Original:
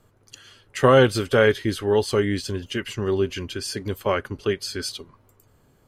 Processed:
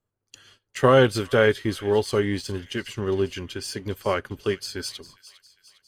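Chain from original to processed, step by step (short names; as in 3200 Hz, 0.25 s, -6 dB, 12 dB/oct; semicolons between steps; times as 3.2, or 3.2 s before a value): gate -49 dBFS, range -19 dB; in parallel at -8 dB: crossover distortion -32 dBFS; on the sum: thin delay 0.405 s, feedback 54%, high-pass 2400 Hz, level -15 dB; gain -4 dB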